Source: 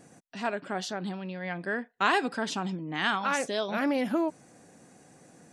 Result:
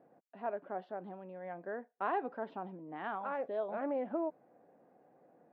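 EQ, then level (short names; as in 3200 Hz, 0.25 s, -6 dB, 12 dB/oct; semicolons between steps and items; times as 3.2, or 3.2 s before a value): band-pass 620 Hz, Q 1.4; air absorption 430 m; -2.5 dB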